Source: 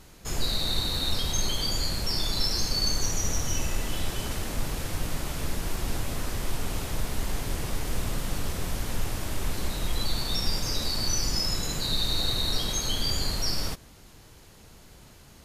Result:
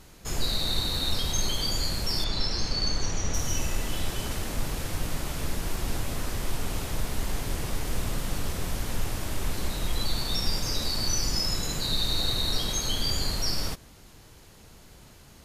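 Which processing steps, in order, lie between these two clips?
2.24–3.34 LPF 5000 Hz 12 dB/oct

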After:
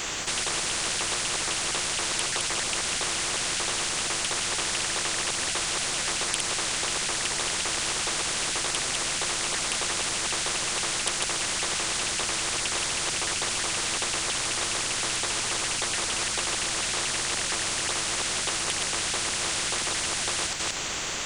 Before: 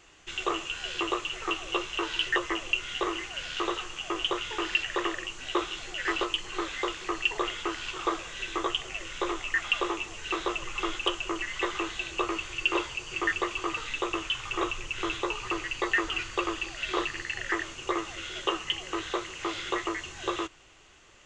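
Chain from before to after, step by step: reverse delay 0.177 s, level -6 dB; high shelf 4500 Hz +10 dB; spectral compressor 10:1; gain +1.5 dB

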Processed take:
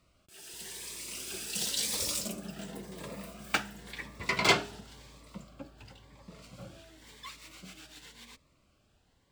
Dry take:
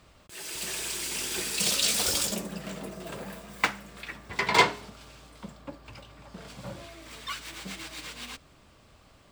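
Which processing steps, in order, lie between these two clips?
Doppler pass-by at 4.14, 11 m/s, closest 15 m; cascading phaser rising 0.94 Hz

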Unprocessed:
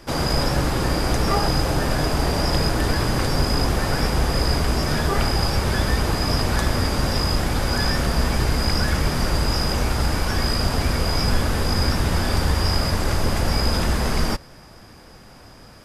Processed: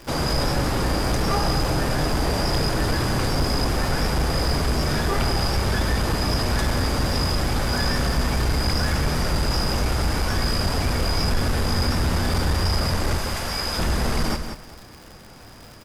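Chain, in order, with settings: 13.18–13.79 low shelf 500 Hz -11.5 dB; echo 0.393 s -23.5 dB; crackle 180/s -34 dBFS; echo 0.184 s -9.5 dB; soft clip -14 dBFS, distortion -17 dB

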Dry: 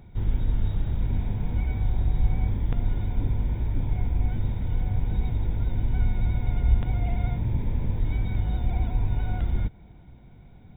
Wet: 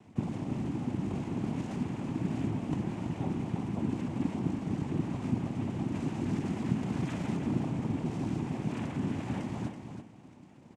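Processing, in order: formant shift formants +4 st; noise vocoder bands 4; feedback echo 0.33 s, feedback 21%, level -8 dB; gain -3 dB

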